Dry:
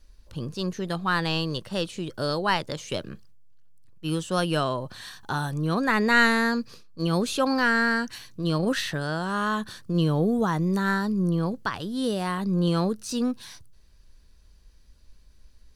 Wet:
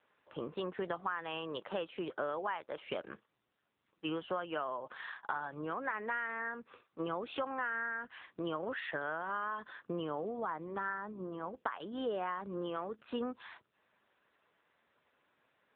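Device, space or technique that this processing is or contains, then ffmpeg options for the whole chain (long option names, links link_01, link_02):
voicemail: -af "highpass=400,lowpass=2700,equalizer=frequency=1100:width=0.65:gain=5,acompressor=threshold=-34dB:ratio=8,volume=1dB" -ar 8000 -c:a libopencore_amrnb -b:a 6700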